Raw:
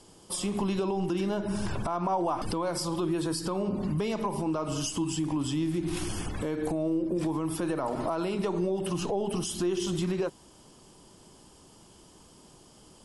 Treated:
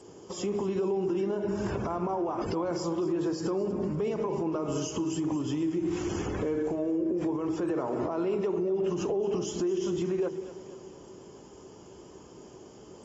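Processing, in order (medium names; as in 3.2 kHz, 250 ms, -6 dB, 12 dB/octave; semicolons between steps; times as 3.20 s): high-pass 64 Hz 12 dB/octave; de-hum 158.8 Hz, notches 4; compression 10:1, threshold -31 dBFS, peak gain reduction 8 dB; fifteen-band graphic EQ 400 Hz +11 dB, 4 kHz -11 dB, 10 kHz +7 dB; two-band feedback delay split 460 Hz, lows 178 ms, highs 239 ms, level -14.5 dB; peak limiter -23.5 dBFS, peak gain reduction 7 dB; trim +1.5 dB; AAC 24 kbps 32 kHz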